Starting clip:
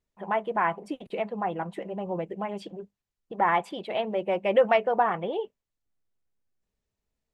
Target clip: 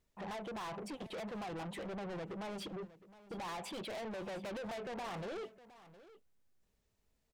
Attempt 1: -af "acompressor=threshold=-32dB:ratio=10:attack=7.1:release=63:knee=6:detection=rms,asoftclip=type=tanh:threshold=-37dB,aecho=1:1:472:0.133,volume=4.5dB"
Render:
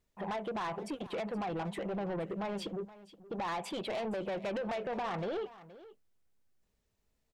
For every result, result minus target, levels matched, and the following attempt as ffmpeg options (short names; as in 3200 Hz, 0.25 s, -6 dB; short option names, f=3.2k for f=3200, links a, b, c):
echo 0.241 s early; soft clip: distortion -5 dB
-af "acompressor=threshold=-32dB:ratio=10:attack=7.1:release=63:knee=6:detection=rms,asoftclip=type=tanh:threshold=-37dB,aecho=1:1:713:0.133,volume=4.5dB"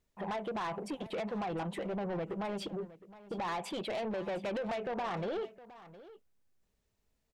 soft clip: distortion -5 dB
-af "acompressor=threshold=-32dB:ratio=10:attack=7.1:release=63:knee=6:detection=rms,asoftclip=type=tanh:threshold=-45.5dB,aecho=1:1:713:0.133,volume=4.5dB"